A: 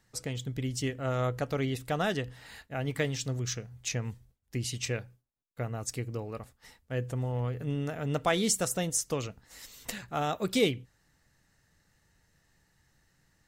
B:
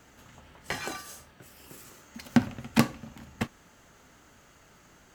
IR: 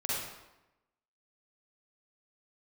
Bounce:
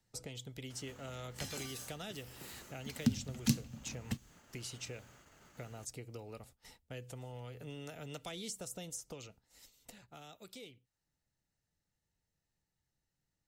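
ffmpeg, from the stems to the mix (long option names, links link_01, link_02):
-filter_complex "[0:a]equalizer=frequency=1700:width_type=o:width=0.56:gain=-7.5,bandreject=frequency=1100:width=8.2,acrossover=split=490|1500[link_01][link_02][link_03];[link_01]acompressor=threshold=-48dB:ratio=4[link_04];[link_02]acompressor=threshold=-48dB:ratio=4[link_05];[link_03]acompressor=threshold=-43dB:ratio=4[link_06];[link_04][link_05][link_06]amix=inputs=3:normalize=0,volume=-1.5dB,afade=type=out:start_time=8.92:duration=0.7:silence=0.354813[link_07];[1:a]acrossover=split=230|3000[link_08][link_09][link_10];[link_09]acompressor=threshold=-45dB:ratio=6[link_11];[link_08][link_11][link_10]amix=inputs=3:normalize=0,adelay=700,volume=-3dB[link_12];[link_07][link_12]amix=inputs=2:normalize=0,agate=range=-7dB:threshold=-60dB:ratio=16:detection=peak,acrossover=split=480|3000[link_13][link_14][link_15];[link_14]acompressor=threshold=-55dB:ratio=1.5[link_16];[link_13][link_16][link_15]amix=inputs=3:normalize=0"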